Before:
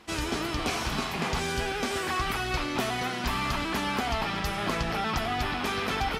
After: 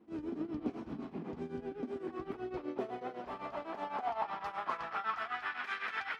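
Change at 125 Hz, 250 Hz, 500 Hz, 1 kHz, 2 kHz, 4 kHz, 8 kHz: -18.5 dB, -8.0 dB, -8.0 dB, -8.5 dB, -11.0 dB, -20.5 dB, under -30 dB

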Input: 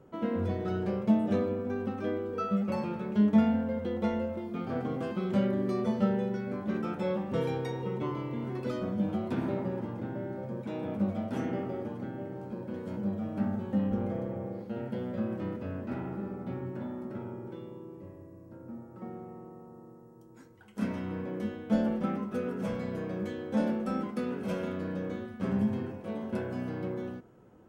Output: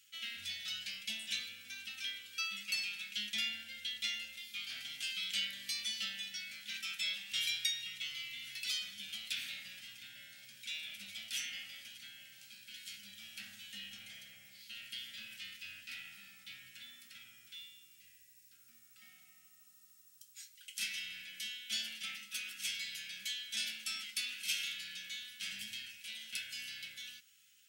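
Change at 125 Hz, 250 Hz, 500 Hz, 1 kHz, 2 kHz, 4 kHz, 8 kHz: -33.5 dB, -35.5 dB, under -35 dB, -22.0 dB, +4.5 dB, +17.0 dB, no reading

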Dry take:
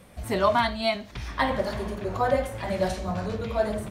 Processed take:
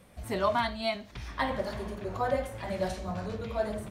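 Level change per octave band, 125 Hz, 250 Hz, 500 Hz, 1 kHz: -5.5 dB, -5.5 dB, -5.5 dB, -5.5 dB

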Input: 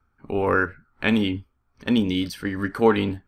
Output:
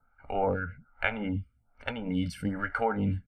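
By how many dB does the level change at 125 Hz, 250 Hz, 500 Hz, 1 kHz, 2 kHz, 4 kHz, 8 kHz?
-3.0 dB, -10.0 dB, -9.5 dB, -5.0 dB, -6.5 dB, -13.0 dB, no reading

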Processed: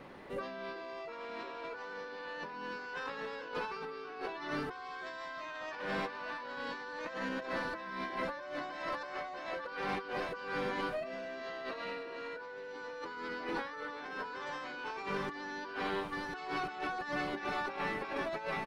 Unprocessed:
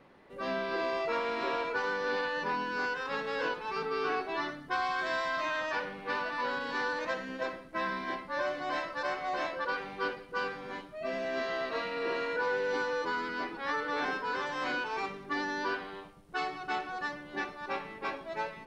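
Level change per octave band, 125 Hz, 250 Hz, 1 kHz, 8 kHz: +1.0 dB, -2.5 dB, -6.0 dB, no reading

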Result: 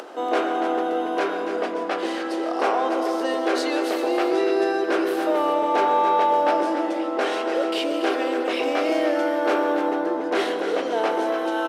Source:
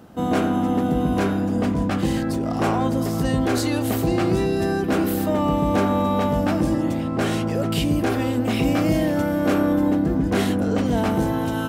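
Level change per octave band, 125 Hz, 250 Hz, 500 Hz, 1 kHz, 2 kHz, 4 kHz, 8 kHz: under -30 dB, -6.5 dB, +2.5 dB, +4.5 dB, +2.5 dB, +1.0 dB, -6.0 dB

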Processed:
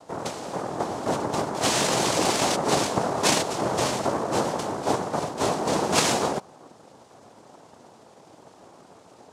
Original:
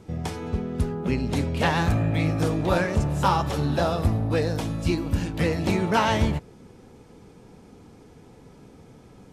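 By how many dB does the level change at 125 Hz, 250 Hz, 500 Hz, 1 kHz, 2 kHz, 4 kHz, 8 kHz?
-11.0 dB, -3.5 dB, +1.5 dB, +2.0 dB, -0.5 dB, +7.0 dB, +14.5 dB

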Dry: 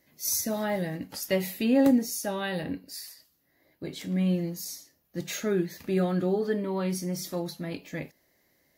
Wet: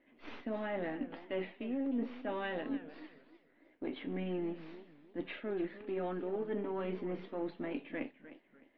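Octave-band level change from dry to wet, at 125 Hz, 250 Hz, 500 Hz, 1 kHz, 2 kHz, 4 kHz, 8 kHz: -15.5 dB, -11.0 dB, -8.5 dB, -7.0 dB, -7.5 dB, -15.0 dB, under -40 dB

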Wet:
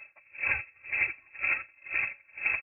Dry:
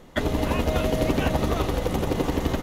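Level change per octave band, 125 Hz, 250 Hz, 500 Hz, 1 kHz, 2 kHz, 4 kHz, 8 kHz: -29.0 dB, -33.5 dB, -28.0 dB, -16.0 dB, +6.0 dB, under -25 dB, under -40 dB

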